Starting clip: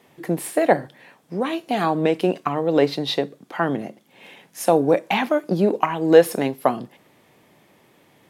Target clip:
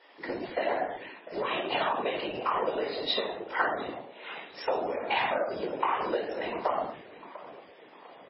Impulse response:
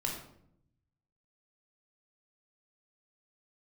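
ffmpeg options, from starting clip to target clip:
-filter_complex "[0:a]acrusher=bits=5:mode=log:mix=0:aa=0.000001[link_01];[1:a]atrim=start_sample=2205,afade=type=out:start_time=0.29:duration=0.01,atrim=end_sample=13230[link_02];[link_01][link_02]afir=irnorm=-1:irlink=0,acompressor=threshold=-21dB:ratio=16,highshelf=frequency=5300:gain=-3,asplit=2[link_03][link_04];[link_04]adelay=700,lowpass=frequency=2700:poles=1,volume=-16dB,asplit=2[link_05][link_06];[link_06]adelay=700,lowpass=frequency=2700:poles=1,volume=0.54,asplit=2[link_07][link_08];[link_08]adelay=700,lowpass=frequency=2700:poles=1,volume=0.54,asplit=2[link_09][link_10];[link_10]adelay=700,lowpass=frequency=2700:poles=1,volume=0.54,asplit=2[link_11][link_12];[link_12]adelay=700,lowpass=frequency=2700:poles=1,volume=0.54[link_13];[link_03][link_05][link_07][link_09][link_11][link_13]amix=inputs=6:normalize=0,asettb=1/sr,asplit=3[link_14][link_15][link_16];[link_14]atrim=end=0.534[link_17];[link_15]atrim=start=0.53:end=2.76,asetpts=PTS-STARTPTS,afade=type=in:duration=0.004:curve=qsin,afade=type=out:start_time=2.226:duration=0.004:curve=qsin,adynamicequalizer=threshold=0.00224:dfrequency=2800:dqfactor=3.1:tfrequency=2800:tqfactor=3.1:attack=5:release=100:ratio=0.375:range=2:mode=boostabove:tftype=bell[link_18];[link_16]atrim=start=2.756[link_19];[link_17][link_18]acrossfade=duration=0.004:curve1=hsin:curve2=qsin[link_20];[link_20][link_19]acrossfade=duration=0.004:curve1=qsin:curve2=hsin,highpass=610,afftfilt=real='hypot(re,im)*cos(2*PI*random(0))':imag='hypot(re,im)*sin(2*PI*random(1))':win_size=512:overlap=0.75,volume=6dB" -ar 16000 -c:a libmp3lame -b:a 16k

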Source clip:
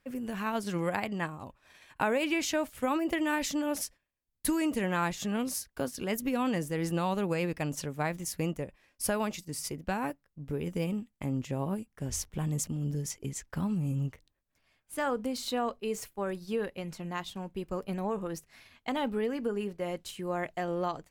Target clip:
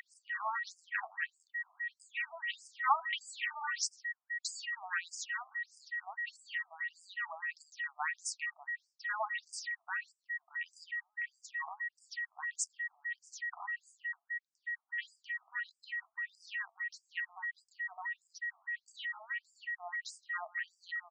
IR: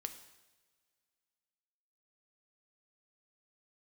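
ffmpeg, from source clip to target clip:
-filter_complex "[0:a]asettb=1/sr,asplit=3[link_01][link_02][link_03];[link_01]atrim=end=2.844[link_04];[link_02]atrim=start=2.84:end=4.62,asetpts=PTS-STARTPTS,afade=type=in:duration=0.004:curve=qsin,afade=type=out:start_time=1.776:duration=0.004:curve=qsin,acontrast=52[link_05];[link_03]atrim=start=4.616[link_06];[link_04][link_05]acrossfade=duration=0.004:curve1=hsin:curve2=qsin[link_07];[link_07][link_06]acrossfade=duration=0.004:curve1=qsin:curve2=hsin,aeval=exprs='val(0)+0.02*sin(2*PI*1900*n/s)':channel_layout=same,asplit=2[link_08][link_09];[link_09]aecho=0:1:170:0.0668[link_10];[link_08][link_10]amix=inputs=2:normalize=0,afftfilt=real='re*between(b*sr/1024,900*pow(6700/900,0.5+0.5*sin(2*PI*1.6*pts/sr))/1.41,900*pow(6700/900,0.5+0.5*sin(2*PI*1.6*pts/sr))*1.41)':imag='im*between(b*sr/1024,900*pow(6700/900,0.5+0.5*sin(2*PI*1.6*pts/sr))/1.41,900*pow(6700/900,0.5+0.5*sin(2*PI*1.6*pts/sr))*1.41)':win_size=1024:overlap=0.75"

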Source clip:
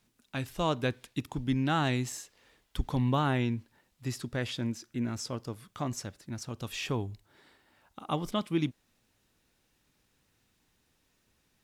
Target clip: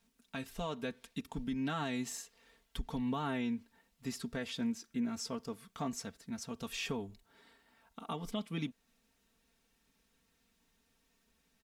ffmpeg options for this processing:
ffmpeg -i in.wav -af "aecho=1:1:4.4:0.78,alimiter=limit=-23dB:level=0:latency=1:release=251,volume=-4.5dB" out.wav

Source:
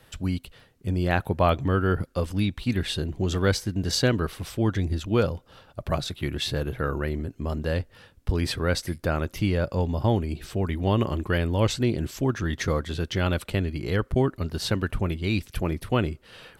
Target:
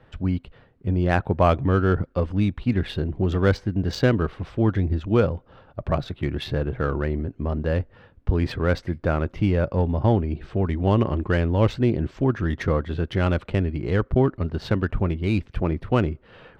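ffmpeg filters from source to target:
ffmpeg -i in.wav -af "highshelf=frequency=3100:gain=-9,adynamicsmooth=sensitivity=2.5:basefreq=2800,volume=3.5dB" out.wav

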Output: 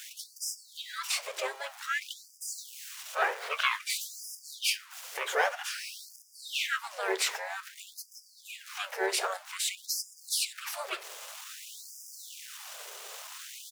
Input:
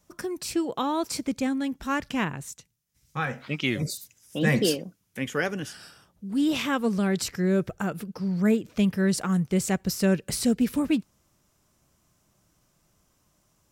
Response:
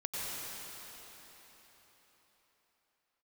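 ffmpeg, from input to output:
-filter_complex "[0:a]aeval=exprs='val(0)+0.5*0.0141*sgn(val(0))':channel_layout=same,flanger=delay=7.2:depth=9.5:regen=-62:speed=0.59:shape=triangular,asplit=3[link_01][link_02][link_03];[link_02]asetrate=22050,aresample=44100,atempo=2,volume=0dB[link_04];[link_03]asetrate=52444,aresample=44100,atempo=0.840896,volume=-7dB[link_05];[link_01][link_04][link_05]amix=inputs=3:normalize=0,acrossover=split=820|1900[link_06][link_07][link_08];[link_07]crystalizer=i=4.5:c=0[link_09];[link_06][link_09][link_08]amix=inputs=3:normalize=0,afftfilt=real='re*gte(b*sr/1024,350*pow(4900/350,0.5+0.5*sin(2*PI*0.52*pts/sr)))':imag='im*gte(b*sr/1024,350*pow(4900/350,0.5+0.5*sin(2*PI*0.52*pts/sr)))':win_size=1024:overlap=0.75,volume=1.5dB"

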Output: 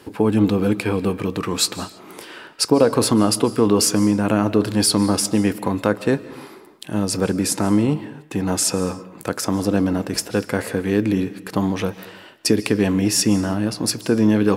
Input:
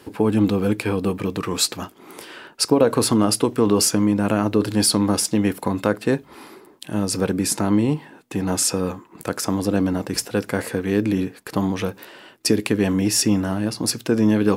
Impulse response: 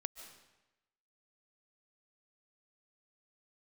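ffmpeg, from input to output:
-filter_complex "[0:a]asplit=2[link_01][link_02];[1:a]atrim=start_sample=2205,afade=type=out:start_time=0.39:duration=0.01,atrim=end_sample=17640,highshelf=frequency=12000:gain=-7.5[link_03];[link_02][link_03]afir=irnorm=-1:irlink=0,volume=0dB[link_04];[link_01][link_04]amix=inputs=2:normalize=0,volume=-3.5dB"

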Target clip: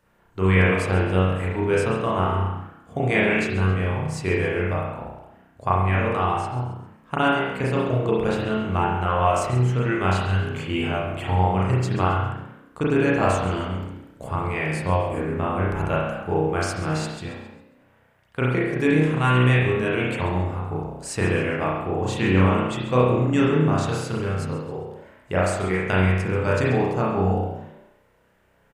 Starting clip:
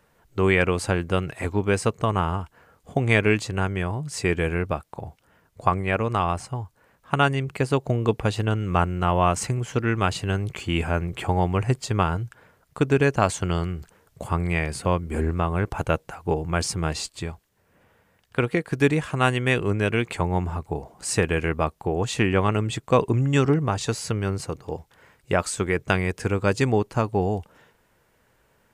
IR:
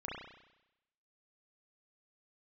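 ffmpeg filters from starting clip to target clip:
-filter_complex "[0:a]asplit=5[link_01][link_02][link_03][link_04][link_05];[link_02]adelay=135,afreqshift=56,volume=-14dB[link_06];[link_03]adelay=270,afreqshift=112,volume=-22.2dB[link_07];[link_04]adelay=405,afreqshift=168,volume=-30.4dB[link_08];[link_05]adelay=540,afreqshift=224,volume=-38.5dB[link_09];[link_01][link_06][link_07][link_08][link_09]amix=inputs=5:normalize=0[link_10];[1:a]atrim=start_sample=2205,afade=type=out:start_time=0.36:duration=0.01,atrim=end_sample=16317[link_11];[link_10][link_11]afir=irnorm=-1:irlink=0"

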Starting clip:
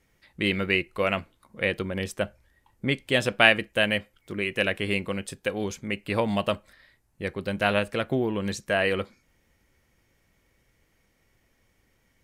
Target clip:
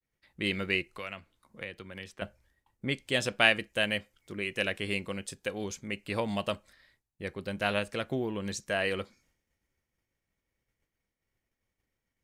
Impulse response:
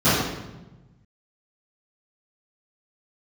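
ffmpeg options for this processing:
-filter_complex "[0:a]asettb=1/sr,asplit=3[link_01][link_02][link_03];[link_01]atrim=end=0.884[link_04];[link_02]atrim=start=0.88:end=2.22,asetpts=PTS-STARTPTS,afade=type=in:duration=0.004:curve=qsin,afade=type=out:start_time=1.336:duration=0.004:curve=qsin,acrossover=split=83|1200|4100[link_05][link_06][link_07][link_08];[link_05]acompressor=threshold=-54dB:ratio=4[link_09];[link_06]acompressor=threshold=-38dB:ratio=4[link_10];[link_07]acompressor=threshold=-34dB:ratio=4[link_11];[link_08]acompressor=threshold=-57dB:ratio=4[link_12];[link_09][link_10][link_11][link_12]amix=inputs=4:normalize=0[link_13];[link_03]atrim=start=2.216[link_14];[link_04][link_13]acrossfade=duration=0.004:curve1=hsin:curve2=qsin[link_15];[link_15][link_14]acrossfade=duration=0.004:curve1=qsin:curve2=hsin,adynamicequalizer=threshold=0.00562:dfrequency=6300:dqfactor=0.85:tfrequency=6300:tqfactor=0.85:attack=5:release=100:ratio=0.375:range=4:mode=boostabove:tftype=bell,agate=range=-33dB:threshold=-58dB:ratio=3:detection=peak,volume=-6.5dB"

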